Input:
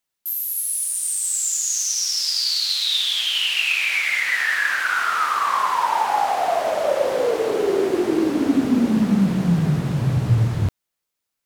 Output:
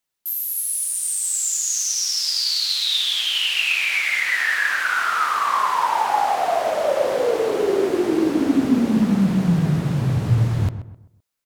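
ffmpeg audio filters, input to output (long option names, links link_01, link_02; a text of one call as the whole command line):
ffmpeg -i in.wav -filter_complex "[0:a]asplit=2[link_01][link_02];[link_02]adelay=129,lowpass=frequency=1700:poles=1,volume=-11dB,asplit=2[link_03][link_04];[link_04]adelay=129,lowpass=frequency=1700:poles=1,volume=0.36,asplit=2[link_05][link_06];[link_06]adelay=129,lowpass=frequency=1700:poles=1,volume=0.36,asplit=2[link_07][link_08];[link_08]adelay=129,lowpass=frequency=1700:poles=1,volume=0.36[link_09];[link_01][link_03][link_05][link_07][link_09]amix=inputs=5:normalize=0" out.wav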